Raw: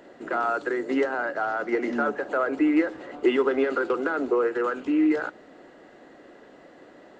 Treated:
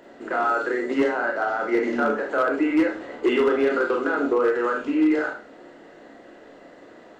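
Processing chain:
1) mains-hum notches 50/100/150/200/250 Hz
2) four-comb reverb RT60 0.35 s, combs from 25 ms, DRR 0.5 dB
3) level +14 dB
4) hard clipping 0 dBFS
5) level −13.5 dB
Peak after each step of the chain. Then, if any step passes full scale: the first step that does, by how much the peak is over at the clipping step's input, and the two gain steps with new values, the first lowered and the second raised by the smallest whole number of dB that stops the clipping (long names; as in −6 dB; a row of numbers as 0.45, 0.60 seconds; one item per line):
−10.0, −8.5, +5.5, 0.0, −13.5 dBFS
step 3, 5.5 dB
step 3 +8 dB, step 5 −7.5 dB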